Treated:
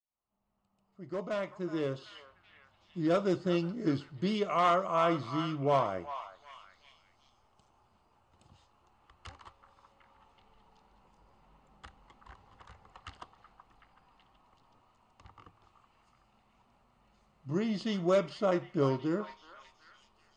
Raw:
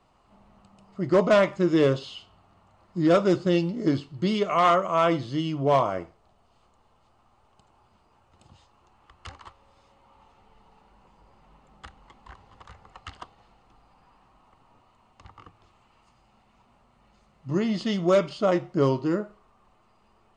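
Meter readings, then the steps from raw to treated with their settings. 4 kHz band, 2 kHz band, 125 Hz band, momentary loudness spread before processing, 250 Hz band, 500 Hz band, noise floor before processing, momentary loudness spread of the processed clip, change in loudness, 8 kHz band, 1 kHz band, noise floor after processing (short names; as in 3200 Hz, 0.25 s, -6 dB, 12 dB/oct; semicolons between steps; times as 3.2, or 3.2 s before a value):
-7.5 dB, -8.5 dB, -7.5 dB, 10 LU, -8.0 dB, -8.5 dB, -63 dBFS, 15 LU, -8.0 dB, n/a, -6.5 dB, -71 dBFS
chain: opening faded in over 3.95 s; delay with a stepping band-pass 0.376 s, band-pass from 1100 Hz, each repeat 0.7 oct, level -8.5 dB; gain -6.5 dB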